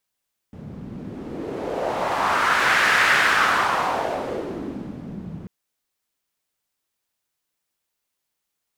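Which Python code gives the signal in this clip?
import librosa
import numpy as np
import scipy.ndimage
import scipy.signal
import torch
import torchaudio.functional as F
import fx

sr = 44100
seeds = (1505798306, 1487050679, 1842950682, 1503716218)

y = fx.wind(sr, seeds[0], length_s=4.94, low_hz=170.0, high_hz=1700.0, q=2.3, gusts=1, swing_db=18.5)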